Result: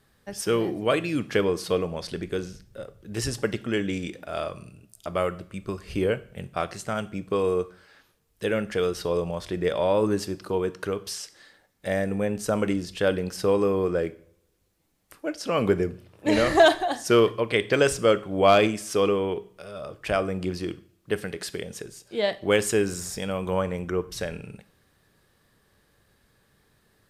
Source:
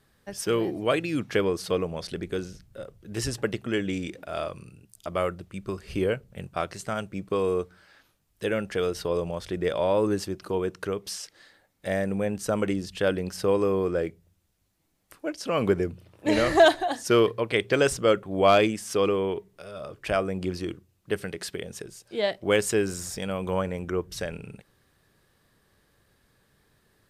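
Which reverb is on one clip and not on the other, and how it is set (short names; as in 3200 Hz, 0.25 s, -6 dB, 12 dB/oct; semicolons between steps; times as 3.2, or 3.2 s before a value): two-slope reverb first 0.48 s, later 1.7 s, from -28 dB, DRR 13 dB; gain +1 dB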